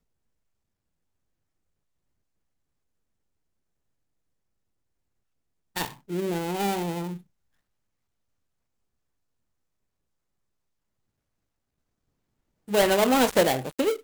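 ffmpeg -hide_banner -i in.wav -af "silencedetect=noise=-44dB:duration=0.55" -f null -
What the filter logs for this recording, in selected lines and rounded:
silence_start: 0.00
silence_end: 5.76 | silence_duration: 5.76
silence_start: 7.21
silence_end: 12.68 | silence_duration: 5.47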